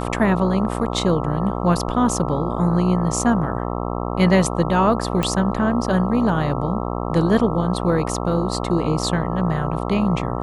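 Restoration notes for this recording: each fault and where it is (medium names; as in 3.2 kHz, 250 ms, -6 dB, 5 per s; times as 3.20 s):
buzz 60 Hz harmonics 22 -25 dBFS
5.23 s: pop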